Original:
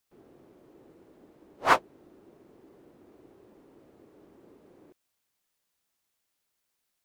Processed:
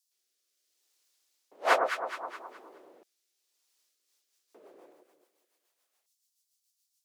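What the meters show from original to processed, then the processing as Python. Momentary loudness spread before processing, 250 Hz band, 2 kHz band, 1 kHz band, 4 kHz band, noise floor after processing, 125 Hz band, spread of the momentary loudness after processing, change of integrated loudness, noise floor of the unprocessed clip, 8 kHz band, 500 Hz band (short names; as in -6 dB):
5 LU, -7.0 dB, -1.0 dB, -2.0 dB, -0.5 dB, -81 dBFS, under -20 dB, 19 LU, -4.0 dB, -80 dBFS, -1.0 dB, +3.0 dB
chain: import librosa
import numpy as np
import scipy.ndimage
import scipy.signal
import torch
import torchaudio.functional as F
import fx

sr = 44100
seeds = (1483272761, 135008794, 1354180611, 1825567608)

y = fx.echo_alternate(x, sr, ms=105, hz=1200.0, feedback_pct=59, wet_db=-2.5)
y = fx.rotary_switch(y, sr, hz=0.7, then_hz=7.0, switch_at_s=3.63)
y = fx.filter_lfo_highpass(y, sr, shape='square', hz=0.33, low_hz=600.0, high_hz=5200.0, q=1.4)
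y = y * 10.0 ** (4.0 / 20.0)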